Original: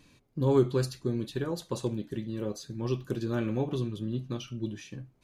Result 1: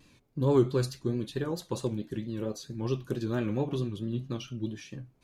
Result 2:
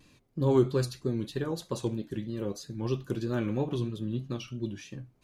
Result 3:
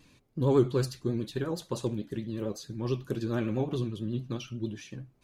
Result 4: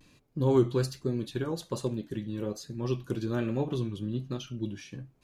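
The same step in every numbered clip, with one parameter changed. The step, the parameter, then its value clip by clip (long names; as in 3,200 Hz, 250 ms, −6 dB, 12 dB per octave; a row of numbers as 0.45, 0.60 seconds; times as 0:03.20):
pitch vibrato, speed: 4.5, 3.1, 11, 1.2 Hertz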